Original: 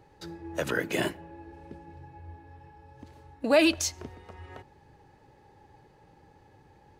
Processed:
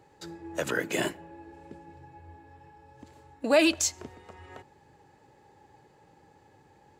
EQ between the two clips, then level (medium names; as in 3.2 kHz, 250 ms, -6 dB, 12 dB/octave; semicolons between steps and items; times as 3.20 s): high-pass 140 Hz 6 dB/octave; peaking EQ 7.4 kHz +9 dB 0.23 oct; 0.0 dB